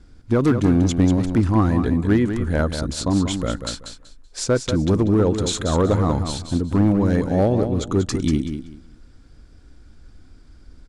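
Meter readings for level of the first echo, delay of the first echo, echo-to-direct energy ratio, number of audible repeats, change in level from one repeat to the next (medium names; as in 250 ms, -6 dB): -8.0 dB, 190 ms, -8.0 dB, 3, -13.0 dB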